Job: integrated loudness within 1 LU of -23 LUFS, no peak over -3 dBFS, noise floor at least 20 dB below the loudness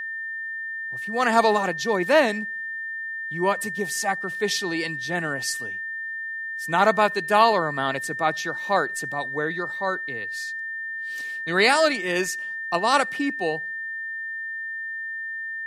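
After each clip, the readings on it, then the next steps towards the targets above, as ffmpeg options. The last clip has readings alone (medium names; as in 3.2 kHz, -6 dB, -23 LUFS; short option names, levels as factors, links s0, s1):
steady tone 1.8 kHz; tone level -29 dBFS; loudness -24.5 LUFS; peak level -4.0 dBFS; loudness target -23.0 LUFS
-> -af "bandreject=f=1800:w=30"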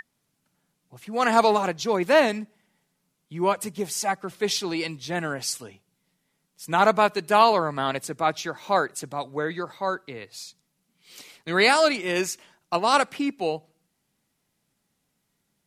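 steady tone not found; loudness -24.0 LUFS; peak level -4.5 dBFS; loudness target -23.0 LUFS
-> -af "volume=1.12"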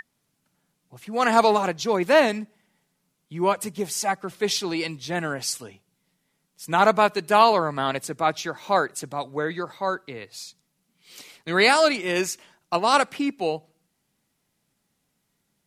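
loudness -23.0 LUFS; peak level -3.5 dBFS; noise floor -75 dBFS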